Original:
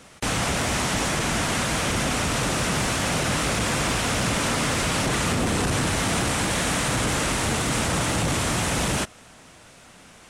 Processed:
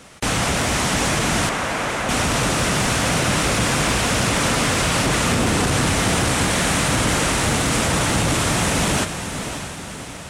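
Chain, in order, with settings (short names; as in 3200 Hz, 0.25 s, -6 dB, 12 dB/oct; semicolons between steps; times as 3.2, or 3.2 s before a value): 1.49–2.09 BPF 430–2200 Hz; diffused feedback echo 0.598 s, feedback 53%, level -9 dB; gain +4 dB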